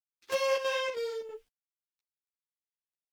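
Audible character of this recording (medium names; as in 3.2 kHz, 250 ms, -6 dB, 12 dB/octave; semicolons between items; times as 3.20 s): chopped level 3.1 Hz, depth 65%, duty 75%; a quantiser's noise floor 12-bit, dither none; a shimmering, thickened sound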